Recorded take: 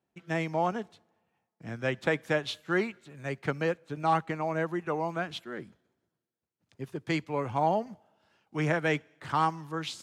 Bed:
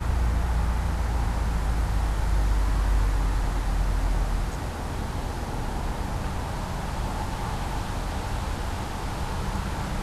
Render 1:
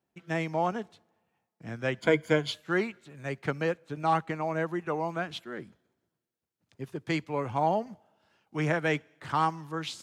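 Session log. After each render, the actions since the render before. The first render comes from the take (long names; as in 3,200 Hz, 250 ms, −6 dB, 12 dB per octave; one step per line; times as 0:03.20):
0:02.00–0:02.52: EQ curve with evenly spaced ripples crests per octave 1.8, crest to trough 14 dB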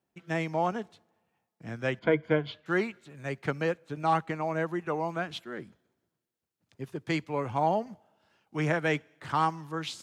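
0:01.99–0:02.66: high-frequency loss of the air 330 metres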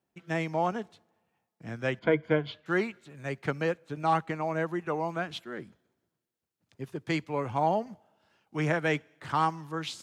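no processing that can be heard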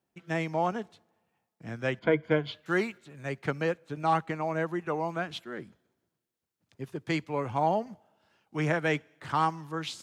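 0:02.31–0:02.98: high-shelf EQ 6,000 Hz +8.5 dB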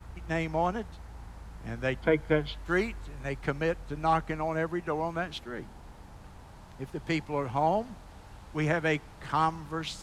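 mix in bed −19.5 dB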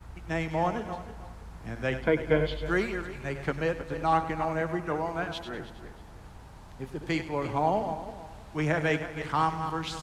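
feedback delay that plays each chunk backwards 159 ms, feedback 48%, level −9 dB
repeating echo 99 ms, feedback 51%, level −14 dB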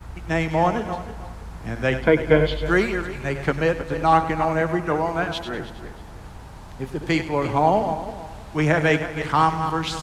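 level +8 dB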